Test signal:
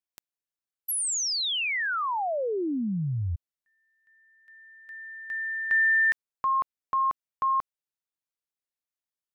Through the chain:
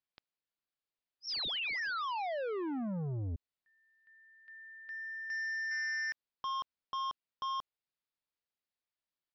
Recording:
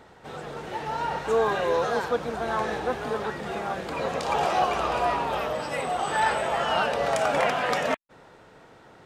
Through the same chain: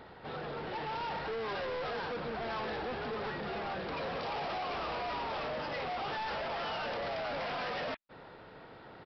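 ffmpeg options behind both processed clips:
ffmpeg -i in.wav -af "alimiter=limit=-19dB:level=0:latency=1:release=22,aresample=11025,asoftclip=type=tanh:threshold=-35dB,aresample=44100" out.wav

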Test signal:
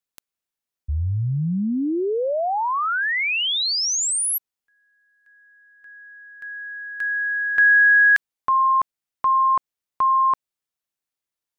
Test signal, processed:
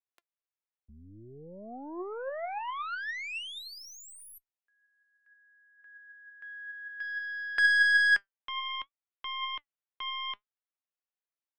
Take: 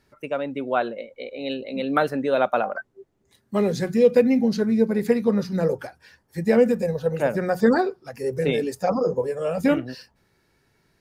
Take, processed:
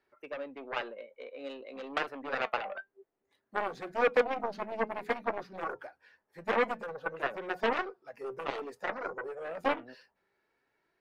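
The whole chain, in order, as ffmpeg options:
ffmpeg -i in.wav -filter_complex "[0:a]aeval=exprs='0.531*(cos(1*acos(clip(val(0)/0.531,-1,1)))-cos(1*PI/2))+0.0531*(cos(5*acos(clip(val(0)/0.531,-1,1)))-cos(5*PI/2))+0.0841*(cos(6*acos(clip(val(0)/0.531,-1,1)))-cos(6*PI/2))+0.211*(cos(7*acos(clip(val(0)/0.531,-1,1)))-cos(7*PI/2))+0.0299*(cos(8*acos(clip(val(0)/0.531,-1,1)))-cos(8*PI/2))':channel_layout=same,flanger=delay=2.6:depth=2.5:regen=76:speed=0.54:shape=sinusoidal,acrossover=split=330 3200:gain=0.141 1 0.178[link_01][link_02][link_03];[link_01][link_02][link_03]amix=inputs=3:normalize=0,volume=-6dB" out.wav

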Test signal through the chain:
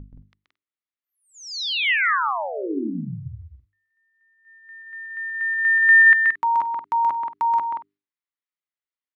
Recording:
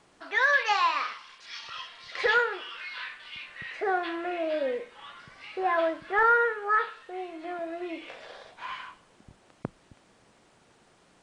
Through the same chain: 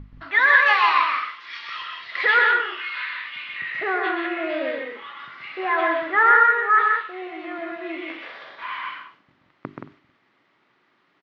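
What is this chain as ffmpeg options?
ffmpeg -i in.wav -filter_complex "[0:a]highpass=170,equalizer=frequency=200:width_type=q:width=4:gain=-5,equalizer=frequency=290:width_type=q:width=4:gain=3,equalizer=frequency=490:width_type=q:width=4:gain=-8,equalizer=frequency=740:width_type=q:width=4:gain=-5,equalizer=frequency=1200:width_type=q:width=4:gain=5,equalizer=frequency=2000:width_type=q:width=4:gain=7,lowpass=frequency=4100:width=0.5412,lowpass=frequency=4100:width=1.3066,agate=range=-9dB:threshold=-53dB:ratio=16:detection=peak,aeval=exprs='val(0)+0.0126*(sin(2*PI*50*n/s)+sin(2*PI*2*50*n/s)/2+sin(2*PI*3*50*n/s)/3+sin(2*PI*4*50*n/s)/4+sin(2*PI*5*50*n/s)/5)':channel_layout=same,bandreject=frequency=50:width_type=h:width=6,bandreject=frequency=100:width_type=h:width=6,bandreject=frequency=150:width_type=h:width=6,bandreject=frequency=200:width_type=h:width=6,bandreject=frequency=250:width_type=h:width=6,bandreject=frequency=300:width_type=h:width=6,bandreject=frequency=350:width_type=h:width=6,bandreject=frequency=400:width_type=h:width=6,asplit=2[link_01][link_02];[link_02]aecho=0:1:128|175|225:0.631|0.562|0.106[link_03];[link_01][link_03]amix=inputs=2:normalize=0,volume=3.5dB" out.wav

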